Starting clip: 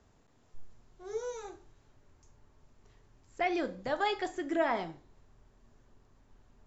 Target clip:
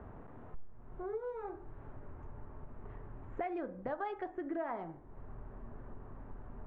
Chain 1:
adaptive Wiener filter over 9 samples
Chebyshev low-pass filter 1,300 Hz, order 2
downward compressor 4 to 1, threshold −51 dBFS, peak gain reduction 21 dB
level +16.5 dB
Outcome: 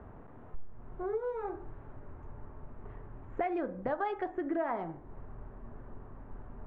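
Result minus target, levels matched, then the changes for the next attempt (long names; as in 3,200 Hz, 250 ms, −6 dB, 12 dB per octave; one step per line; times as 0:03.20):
downward compressor: peak gain reduction −5 dB
change: downward compressor 4 to 1, threshold −58 dBFS, peak gain reduction 26.5 dB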